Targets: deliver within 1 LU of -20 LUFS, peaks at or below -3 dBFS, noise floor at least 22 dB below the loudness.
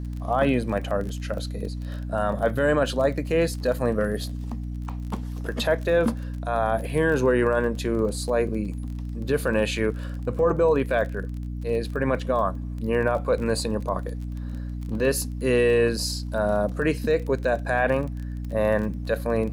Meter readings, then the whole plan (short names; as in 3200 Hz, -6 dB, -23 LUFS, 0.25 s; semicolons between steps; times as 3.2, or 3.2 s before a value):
ticks 25/s; hum 60 Hz; harmonics up to 300 Hz; hum level -29 dBFS; loudness -25.0 LUFS; peak -9.5 dBFS; loudness target -20.0 LUFS
-> de-click; de-hum 60 Hz, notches 5; gain +5 dB